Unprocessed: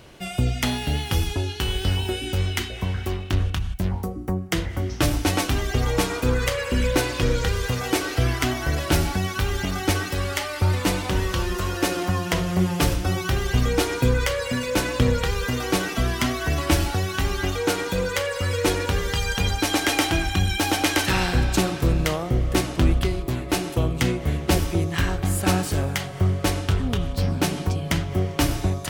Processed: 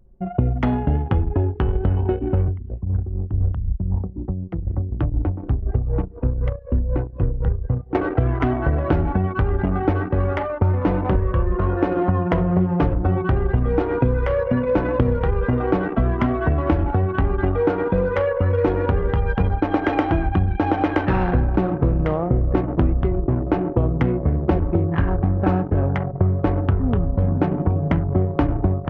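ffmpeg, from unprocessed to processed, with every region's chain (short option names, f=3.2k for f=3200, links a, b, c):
-filter_complex "[0:a]asettb=1/sr,asplit=3[a][b][c];[a]atrim=end=2.484[d];[b]atrim=start=2.48:end=7.95,asetpts=PTS-STARTPTS,afade=t=in:d=0.004:c=qsin,afade=t=out:st=5.466:d=0.004:c=qsin,acrossover=split=150|3000[e][f][g];[f]acompressor=threshold=-36dB:ratio=2.5:attack=3.2:release=140:knee=2.83:detection=peak[h];[e][h][g]amix=inputs=3:normalize=0,tremolo=f=4:d=0.6[i];[c]atrim=start=7.946[j];[d][i]acrossfade=d=0.004:c1=hsin:c2=qsin[k];[k][j]acrossfade=d=0.004:c1=qsin:c2=hsin,asettb=1/sr,asplit=3[l][m][n];[l]atrim=end=11.154[o];[m]atrim=start=11.15:end=11.58,asetpts=PTS-STARTPTS,afade=t=in:d=0.004:c=qsin,afade=t=out:st=0.426:d=0.004:c=qsin,lowpass=2.8k,equalizer=f=800:t=o:w=0.57:g=-4.5,aecho=1:1:1.8:0.49,atrim=end_sample=18963[p];[n]atrim=start=11.576[q];[o][p]acrossfade=d=0.004:c1=hsin:c2=qsin[r];[r][q]acrossfade=d=0.004:c1=qsin:c2=hsin,lowpass=1.1k,anlmdn=15.8,acompressor=threshold=-24dB:ratio=5,volume=9dB"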